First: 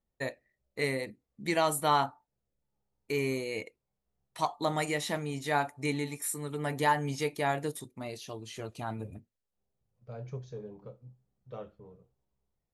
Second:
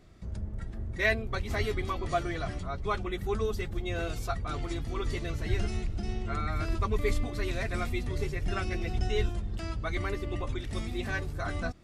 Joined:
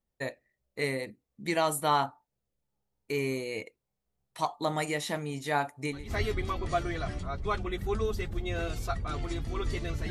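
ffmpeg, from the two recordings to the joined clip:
ffmpeg -i cue0.wav -i cue1.wav -filter_complex "[0:a]apad=whole_dur=10.1,atrim=end=10.1,atrim=end=6.16,asetpts=PTS-STARTPTS[link_01];[1:a]atrim=start=1.24:end=5.5,asetpts=PTS-STARTPTS[link_02];[link_01][link_02]acrossfade=duration=0.32:curve1=qua:curve2=qua" out.wav

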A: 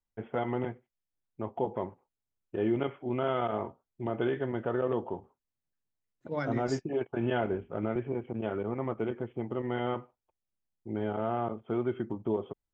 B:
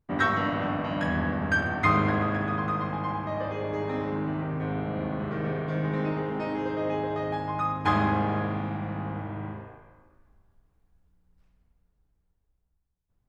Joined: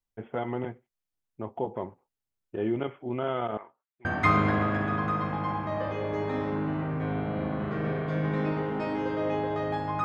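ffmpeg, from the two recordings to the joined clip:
ffmpeg -i cue0.wav -i cue1.wav -filter_complex "[0:a]asettb=1/sr,asplit=3[link_01][link_02][link_03];[link_01]atrim=end=3.574[link_04];[link_02]atrim=start=3.57:end=4.05,asetpts=PTS-STARTPTS,afade=type=in:duration=0.004:curve=qsin,afade=type=out:start_time=0.476:duration=0.004:curve=qsin,bandpass=frequency=1800:width_type=q:width=1.6:csg=0[link_05];[link_03]atrim=start=4.046[link_06];[link_04][link_05]acrossfade=duration=0.004:curve1=hsin:curve2=qsin[link_07];[link_07][link_06]acrossfade=duration=0.004:curve1=qsin:curve2=hsin,apad=whole_dur=10.04,atrim=end=10.04,atrim=end=4.052[link_08];[1:a]atrim=start=1.648:end=7.64[link_09];[link_08][link_09]acrossfade=duration=0.004:curve1=hsin:curve2=hsin" out.wav

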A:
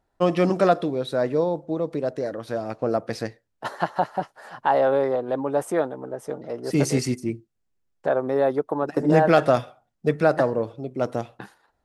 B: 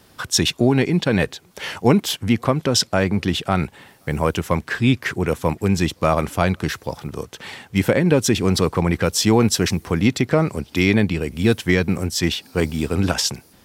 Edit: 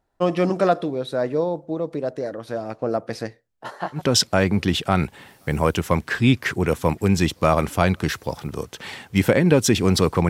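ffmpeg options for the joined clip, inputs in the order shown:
ffmpeg -i cue0.wav -i cue1.wav -filter_complex "[0:a]asplit=3[link_01][link_02][link_03];[link_01]afade=type=out:start_time=3.36:duration=0.02[link_04];[link_02]flanger=delay=18.5:depth=7:speed=0.72,afade=type=in:start_time=3.36:duration=0.02,afade=type=out:start_time=4.02:duration=0.02[link_05];[link_03]afade=type=in:start_time=4.02:duration=0.02[link_06];[link_04][link_05][link_06]amix=inputs=3:normalize=0,apad=whole_dur=10.29,atrim=end=10.29,atrim=end=4.02,asetpts=PTS-STARTPTS[link_07];[1:a]atrim=start=2.52:end=8.89,asetpts=PTS-STARTPTS[link_08];[link_07][link_08]acrossfade=duration=0.1:curve1=tri:curve2=tri" out.wav

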